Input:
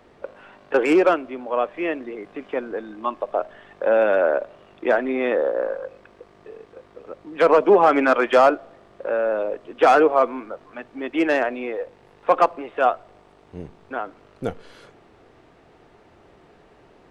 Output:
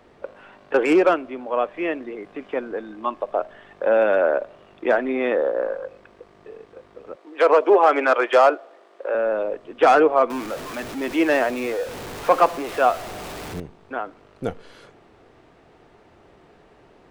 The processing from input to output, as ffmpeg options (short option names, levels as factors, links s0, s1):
-filter_complex "[0:a]asettb=1/sr,asplit=3[s0][s1][s2];[s0]atrim=end=7.164[s3];[s1]atrim=start=7.16:end=9.15,asetpts=PTS-STARTPTS,afade=t=in:d=0.004:c=qsin,afade=t=out:st=1.986:d=0.004:c=qsin,highpass=f=340:w=0.5412,highpass=f=340:w=1.3066[s4];[s2]atrim=start=9.146[s5];[s3][s4]acrossfade=d=0.004:c1=hsin:c2=qsin[s6];[s6][s5]acrossfade=d=0.004:c1=qsin:c2=hsin,asettb=1/sr,asplit=3[s7][s8][s9];[s7]atrim=end=10.304[s10];[s8]atrim=start=10.3:end=13.6,asetpts=PTS-STARTPTS,afade=t=in:d=0.004:c=qsin,afade=t=out:st=3.296:d=0.004:c=qsin,aeval=exprs='val(0)+0.5*0.0355*sgn(val(0))':c=same[s11];[s9]atrim=start=13.596[s12];[s10][s11]acrossfade=d=0.004:c1=hsin:c2=qsin[s13];[s13][s12]acrossfade=d=0.004:c1=qsin:c2=hsin"